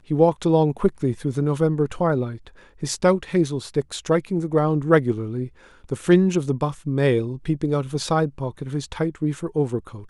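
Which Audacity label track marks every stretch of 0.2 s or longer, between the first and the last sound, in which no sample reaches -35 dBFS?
2.470000	2.820000	silence
5.480000	5.850000	silence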